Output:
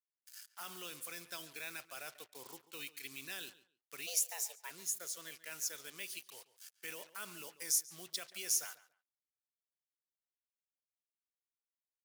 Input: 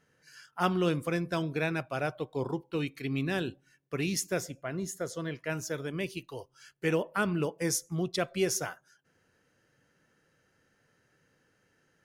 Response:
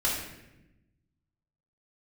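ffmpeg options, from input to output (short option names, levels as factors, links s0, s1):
-filter_complex "[0:a]asplit=3[s0][s1][s2];[s0]afade=t=out:st=4.06:d=0.02[s3];[s1]afreqshift=310,afade=t=in:st=4.06:d=0.02,afade=t=out:st=4.69:d=0.02[s4];[s2]afade=t=in:st=4.69:d=0.02[s5];[s3][s4][s5]amix=inputs=3:normalize=0,alimiter=limit=0.0631:level=0:latency=1:release=38,acrusher=bits=7:mix=0:aa=0.5,aderivative,asplit=2[s6][s7];[s7]adelay=140,lowpass=f=3800:p=1,volume=0.15,asplit=2[s8][s9];[s9]adelay=140,lowpass=f=3800:p=1,volume=0.2[s10];[s8][s10]amix=inputs=2:normalize=0[s11];[s6][s11]amix=inputs=2:normalize=0,volume=1.5"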